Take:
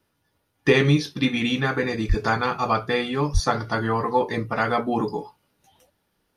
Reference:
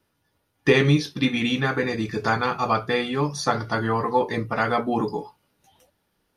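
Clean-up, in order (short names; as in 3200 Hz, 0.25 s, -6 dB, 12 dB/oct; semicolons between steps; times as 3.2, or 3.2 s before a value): de-plosive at 2.08/3.33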